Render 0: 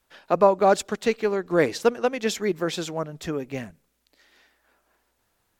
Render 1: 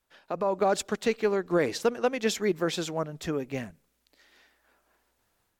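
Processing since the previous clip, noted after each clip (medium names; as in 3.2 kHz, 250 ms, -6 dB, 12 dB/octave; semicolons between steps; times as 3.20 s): peak limiter -13 dBFS, peak gain reduction 8.5 dB; level rider gain up to 6 dB; trim -7.5 dB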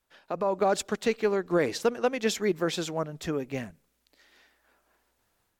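no audible change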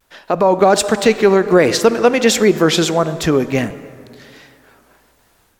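plate-style reverb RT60 2.5 s, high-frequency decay 0.6×, DRR 14 dB; in parallel at +3 dB: peak limiter -22 dBFS, peak gain reduction 8 dB; on the sum: vibrato 1.4 Hz 73 cents; trim +9 dB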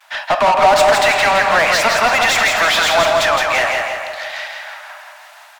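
rippled Chebyshev high-pass 590 Hz, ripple 3 dB; overdrive pedal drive 26 dB, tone 2.6 kHz, clips at -6.5 dBFS; feedback delay 166 ms, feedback 49%, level -4 dB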